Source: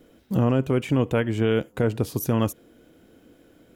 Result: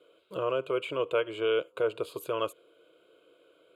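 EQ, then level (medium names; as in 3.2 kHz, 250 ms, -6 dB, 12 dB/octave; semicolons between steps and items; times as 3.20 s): band-pass 420–6700 Hz; static phaser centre 1.2 kHz, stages 8; band-stop 2 kHz, Q 14; 0.0 dB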